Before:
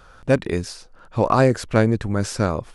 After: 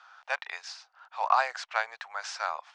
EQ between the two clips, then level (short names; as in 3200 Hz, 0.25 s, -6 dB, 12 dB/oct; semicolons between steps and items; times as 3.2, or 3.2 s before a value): elliptic high-pass 760 Hz, stop band 60 dB; LPF 6600 Hz 24 dB/oct; air absorption 51 m; -2.0 dB